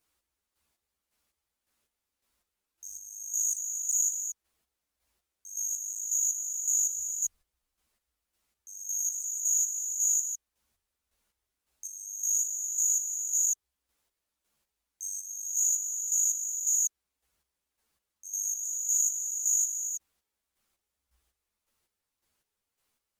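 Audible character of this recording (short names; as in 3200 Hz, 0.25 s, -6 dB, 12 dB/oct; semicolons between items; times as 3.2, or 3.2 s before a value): chopped level 1.8 Hz, depth 60%, duty 35%; a shimmering, thickened sound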